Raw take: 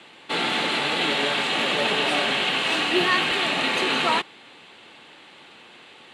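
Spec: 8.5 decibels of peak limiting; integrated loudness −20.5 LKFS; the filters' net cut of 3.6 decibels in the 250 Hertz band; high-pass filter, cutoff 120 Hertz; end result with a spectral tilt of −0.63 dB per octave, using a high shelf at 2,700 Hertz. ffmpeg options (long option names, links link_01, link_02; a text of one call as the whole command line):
ffmpeg -i in.wav -af "highpass=120,equalizer=frequency=250:width_type=o:gain=-5,highshelf=frequency=2700:gain=7.5,volume=0.5dB,alimiter=limit=-13dB:level=0:latency=1" out.wav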